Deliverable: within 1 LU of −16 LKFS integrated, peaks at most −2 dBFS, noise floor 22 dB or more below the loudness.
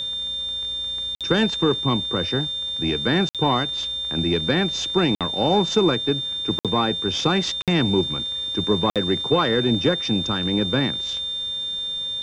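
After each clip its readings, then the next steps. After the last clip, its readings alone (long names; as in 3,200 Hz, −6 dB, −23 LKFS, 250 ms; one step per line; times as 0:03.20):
number of dropouts 6; longest dropout 57 ms; interfering tone 3,600 Hz; level of the tone −25 dBFS; integrated loudness −21.5 LKFS; sample peak −6.5 dBFS; target loudness −16.0 LKFS
→ repair the gap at 0:01.15/0:03.29/0:05.15/0:06.59/0:07.62/0:08.90, 57 ms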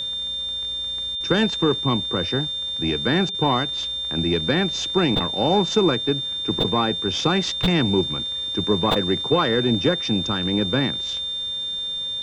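number of dropouts 0; interfering tone 3,600 Hz; level of the tone −25 dBFS
→ notch filter 3,600 Hz, Q 30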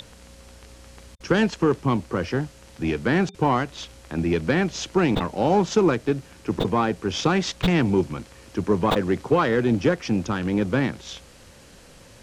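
interfering tone none found; integrated loudness −23.5 LKFS; sample peak −7.5 dBFS; target loudness −16.0 LKFS
→ level +7.5 dB
brickwall limiter −2 dBFS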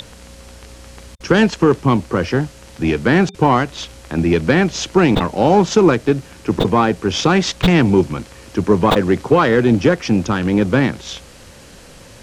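integrated loudness −16.0 LKFS; sample peak −2.0 dBFS; background noise floor −41 dBFS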